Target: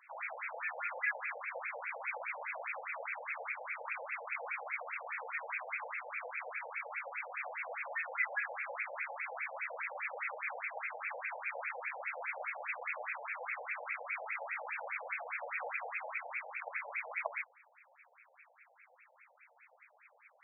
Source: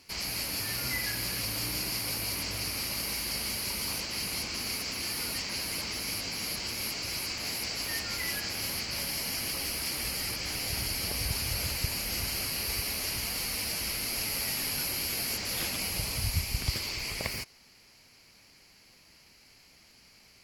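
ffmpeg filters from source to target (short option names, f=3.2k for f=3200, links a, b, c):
-af "afftfilt=real='re*between(b*sr/1024,620*pow(1900/620,0.5+0.5*sin(2*PI*4.9*pts/sr))/1.41,620*pow(1900/620,0.5+0.5*sin(2*PI*4.9*pts/sr))*1.41)':imag='im*between(b*sr/1024,620*pow(1900/620,0.5+0.5*sin(2*PI*4.9*pts/sr))/1.41,620*pow(1900/620,0.5+0.5*sin(2*PI*4.9*pts/sr))*1.41)':win_size=1024:overlap=0.75,volume=6dB"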